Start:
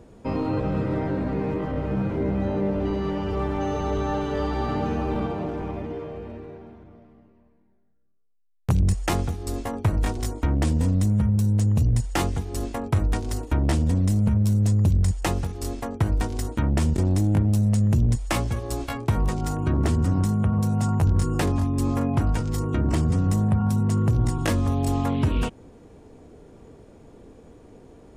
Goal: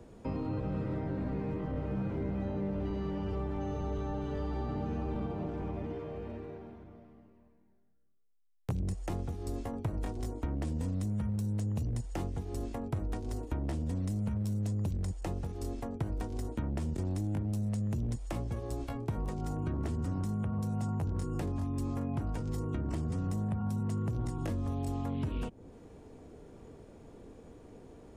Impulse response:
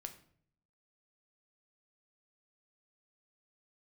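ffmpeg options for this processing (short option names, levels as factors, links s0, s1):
-filter_complex "[0:a]acrossover=split=220|810[s0][s1][s2];[s0]acompressor=threshold=0.0316:ratio=4[s3];[s1]acompressor=threshold=0.0158:ratio=4[s4];[s2]acompressor=threshold=0.00398:ratio=4[s5];[s3][s4][s5]amix=inputs=3:normalize=0,volume=0.631"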